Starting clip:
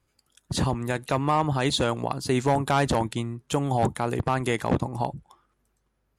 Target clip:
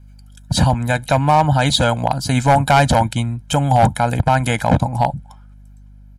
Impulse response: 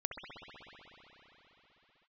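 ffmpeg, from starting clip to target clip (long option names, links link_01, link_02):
-af "aeval=exprs='val(0)+0.00224*(sin(2*PI*50*n/s)+sin(2*PI*2*50*n/s)/2+sin(2*PI*3*50*n/s)/3+sin(2*PI*4*50*n/s)/4+sin(2*PI*5*50*n/s)/5)':channel_layout=same,aecho=1:1:1.3:0.92,aeval=exprs='0.299*(abs(mod(val(0)/0.299+3,4)-2)-1)':channel_layout=same,volume=7dB"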